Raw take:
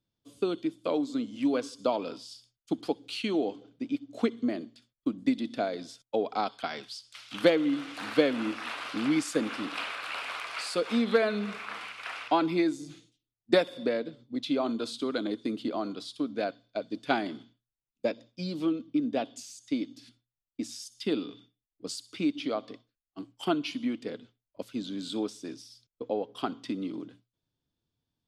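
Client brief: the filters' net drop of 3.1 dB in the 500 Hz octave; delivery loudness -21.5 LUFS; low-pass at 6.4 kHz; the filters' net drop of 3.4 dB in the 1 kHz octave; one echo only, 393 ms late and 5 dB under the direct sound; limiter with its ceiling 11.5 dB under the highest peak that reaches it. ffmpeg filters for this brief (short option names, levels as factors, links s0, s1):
-af "lowpass=6400,equalizer=f=500:t=o:g=-3,equalizer=f=1000:t=o:g=-3.5,alimiter=limit=0.075:level=0:latency=1,aecho=1:1:393:0.562,volume=4.47"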